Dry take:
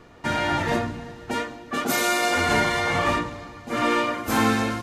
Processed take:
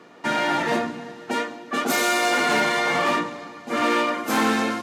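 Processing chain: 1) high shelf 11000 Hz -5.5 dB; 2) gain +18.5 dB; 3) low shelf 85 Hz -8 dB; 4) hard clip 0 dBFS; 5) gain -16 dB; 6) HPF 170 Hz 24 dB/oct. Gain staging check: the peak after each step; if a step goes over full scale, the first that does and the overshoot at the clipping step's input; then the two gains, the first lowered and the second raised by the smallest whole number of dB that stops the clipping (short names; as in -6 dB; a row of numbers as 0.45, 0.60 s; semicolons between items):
-9.5, +9.0, +9.0, 0.0, -16.0, -8.5 dBFS; step 2, 9.0 dB; step 2 +9.5 dB, step 5 -7 dB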